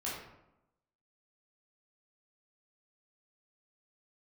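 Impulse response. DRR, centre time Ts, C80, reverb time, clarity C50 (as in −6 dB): −7.5 dB, 58 ms, 4.5 dB, 0.90 s, 1.5 dB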